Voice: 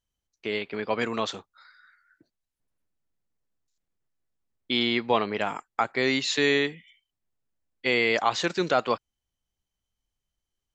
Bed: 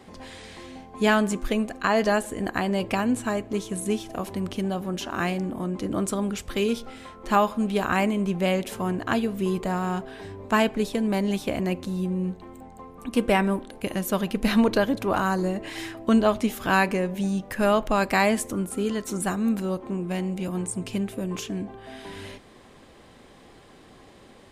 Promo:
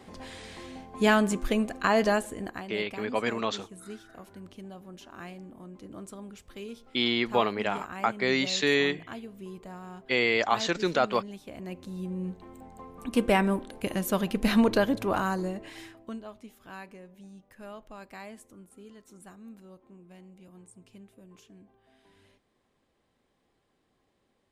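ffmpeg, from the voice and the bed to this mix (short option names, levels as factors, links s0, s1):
-filter_complex "[0:a]adelay=2250,volume=0.841[s0];[1:a]volume=4.47,afade=t=out:st=2.03:d=0.65:silence=0.177828,afade=t=in:st=11.49:d=1.47:silence=0.188365,afade=t=out:st=14.92:d=1.28:silence=0.0891251[s1];[s0][s1]amix=inputs=2:normalize=0"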